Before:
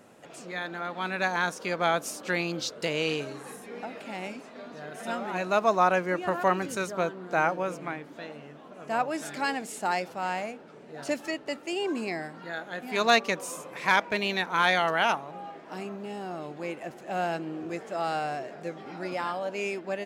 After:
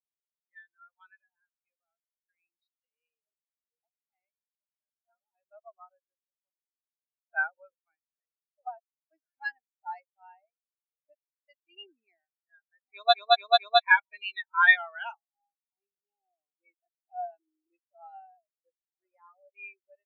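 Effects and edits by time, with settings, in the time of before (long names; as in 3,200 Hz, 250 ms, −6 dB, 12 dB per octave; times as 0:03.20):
0:01.15–0:03.27: downward compressor, threshold −34 dBFS
0:04.09–0:07.27: fade out and dull
0:08.58–0:09.11: reverse
0:10.91–0:11.46: fade out and dull
0:12.91: stutter in place 0.22 s, 4 plays
0:16.37–0:17.78: comb filter 2.7 ms, depth 30%
whole clip: low-pass that shuts in the quiet parts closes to 2,500 Hz, open at −23 dBFS; spectral tilt +4.5 dB per octave; every bin expanded away from the loudest bin 4 to 1; level −4.5 dB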